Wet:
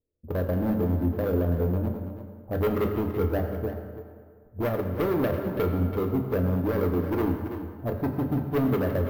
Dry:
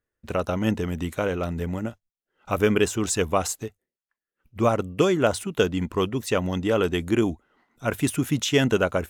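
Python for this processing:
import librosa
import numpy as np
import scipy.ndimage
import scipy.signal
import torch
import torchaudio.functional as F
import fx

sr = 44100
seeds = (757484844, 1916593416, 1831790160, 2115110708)

p1 = scipy.signal.sosfilt(scipy.signal.cheby2(4, 70, 2600.0, 'lowpass', fs=sr, output='sos'), x)
p2 = fx.hum_notches(p1, sr, base_hz=50, count=5)
p3 = fx.level_steps(p2, sr, step_db=10)
p4 = p2 + (p3 * librosa.db_to_amplitude(-2.0))
p5 = np.clip(p4, -10.0 ** (-21.5 / 20.0), 10.0 ** (-21.5 / 20.0))
p6 = p5 + fx.echo_single(p5, sr, ms=332, db=-10.5, dry=0)
p7 = fx.rev_fdn(p6, sr, rt60_s=2.0, lf_ratio=0.9, hf_ratio=0.65, size_ms=68.0, drr_db=3.0)
p8 = np.repeat(scipy.signal.resample_poly(p7, 1, 3), 3)[:len(p7)]
y = p8 * librosa.db_to_amplitude(-2.5)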